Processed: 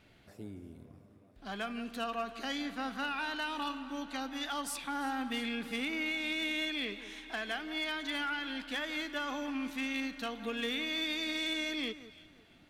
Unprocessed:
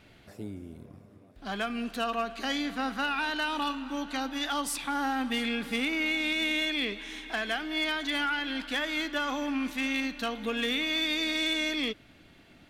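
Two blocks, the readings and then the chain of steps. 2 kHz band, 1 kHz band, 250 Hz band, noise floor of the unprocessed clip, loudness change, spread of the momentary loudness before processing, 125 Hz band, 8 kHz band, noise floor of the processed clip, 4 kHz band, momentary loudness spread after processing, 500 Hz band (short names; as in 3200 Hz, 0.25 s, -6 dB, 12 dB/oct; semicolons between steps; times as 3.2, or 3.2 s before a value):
-6.0 dB, -6.0 dB, -5.5 dB, -57 dBFS, -6.0 dB, 8 LU, n/a, -6.0 dB, -61 dBFS, -6.0 dB, 9 LU, -5.5 dB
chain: echo with dull and thin repeats by turns 0.171 s, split 2000 Hz, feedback 51%, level -13 dB; gain -6 dB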